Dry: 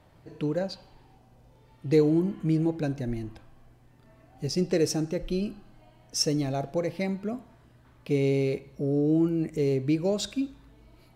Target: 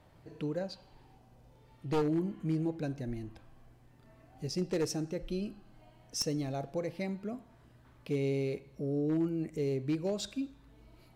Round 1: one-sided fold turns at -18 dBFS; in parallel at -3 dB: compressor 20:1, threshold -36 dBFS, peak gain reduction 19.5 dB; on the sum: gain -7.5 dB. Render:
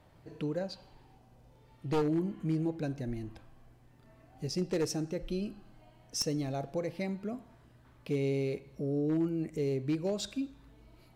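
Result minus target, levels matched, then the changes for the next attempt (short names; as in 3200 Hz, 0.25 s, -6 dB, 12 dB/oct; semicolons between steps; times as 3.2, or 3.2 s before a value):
compressor: peak gain reduction -8.5 dB
change: compressor 20:1, threshold -45 dBFS, peak gain reduction 28 dB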